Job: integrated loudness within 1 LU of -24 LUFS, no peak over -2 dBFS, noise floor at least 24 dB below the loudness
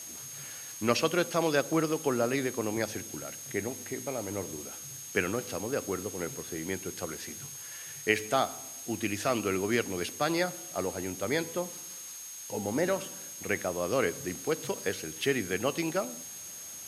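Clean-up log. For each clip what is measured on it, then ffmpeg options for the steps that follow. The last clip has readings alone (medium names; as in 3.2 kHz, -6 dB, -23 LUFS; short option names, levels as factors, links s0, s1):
steady tone 6.5 kHz; tone level -43 dBFS; noise floor -44 dBFS; noise floor target -56 dBFS; loudness -32.0 LUFS; peak level -7.5 dBFS; loudness target -24.0 LUFS
-> -af "bandreject=f=6500:w=30"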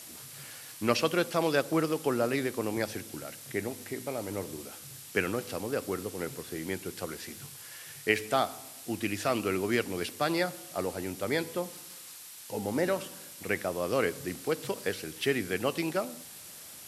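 steady tone not found; noise floor -47 dBFS; noise floor target -56 dBFS
-> -af "afftdn=nr=9:nf=-47"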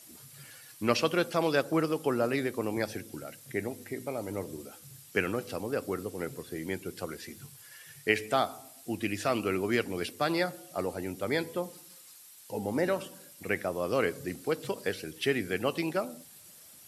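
noise floor -53 dBFS; noise floor target -56 dBFS
-> -af "afftdn=nr=6:nf=-53"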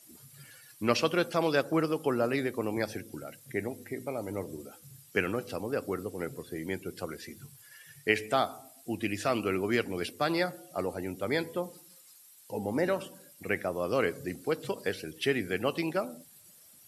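noise floor -57 dBFS; loudness -32.0 LUFS; peak level -8.0 dBFS; loudness target -24.0 LUFS
-> -af "volume=2.51,alimiter=limit=0.794:level=0:latency=1"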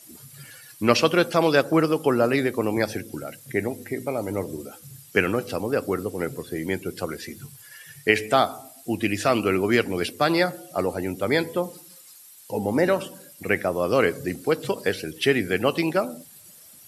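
loudness -24.0 LUFS; peak level -2.0 dBFS; noise floor -49 dBFS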